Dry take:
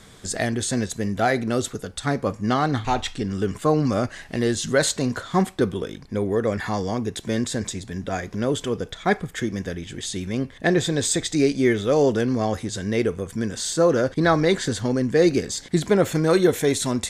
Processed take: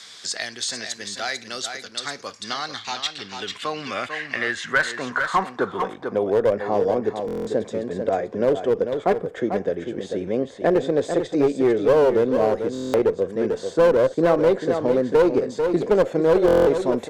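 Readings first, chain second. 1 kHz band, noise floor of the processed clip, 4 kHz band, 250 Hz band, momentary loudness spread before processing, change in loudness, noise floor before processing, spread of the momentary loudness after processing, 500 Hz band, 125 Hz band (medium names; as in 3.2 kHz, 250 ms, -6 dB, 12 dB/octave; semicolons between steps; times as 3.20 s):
+0.5 dB, -42 dBFS, -1.0 dB, -2.5 dB, 9 LU, +1.0 dB, -45 dBFS, 11 LU, +3.5 dB, -8.5 dB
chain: band-pass sweep 4.8 kHz -> 530 Hz, 2.94–6.56 s; in parallel at -2 dB: peak limiter -21.5 dBFS, peak gain reduction 11.5 dB; on the sum: one-sided clip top -19 dBFS; on a send: delay 444 ms -8.5 dB; on the sum: buffer glitch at 7.26/12.73/16.46 s, samples 1024, times 8; three bands compressed up and down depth 40%; trim +4.5 dB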